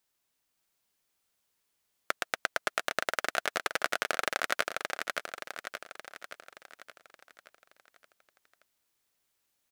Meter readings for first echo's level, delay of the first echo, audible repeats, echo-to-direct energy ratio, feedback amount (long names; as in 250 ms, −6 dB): −4.5 dB, 573 ms, 6, −3.0 dB, 53%